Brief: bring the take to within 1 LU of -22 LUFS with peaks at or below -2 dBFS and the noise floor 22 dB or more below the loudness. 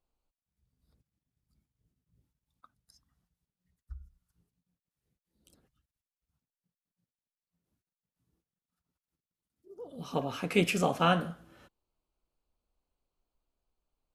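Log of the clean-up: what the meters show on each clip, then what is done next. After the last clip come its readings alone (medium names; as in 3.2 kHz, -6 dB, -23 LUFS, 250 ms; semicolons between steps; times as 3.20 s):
loudness -29.5 LUFS; peak level -10.0 dBFS; loudness target -22.0 LUFS
-> trim +7.5 dB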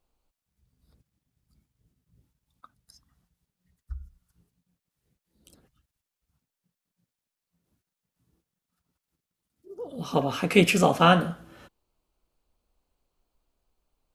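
loudness -22.5 LUFS; peak level -2.5 dBFS; noise floor -88 dBFS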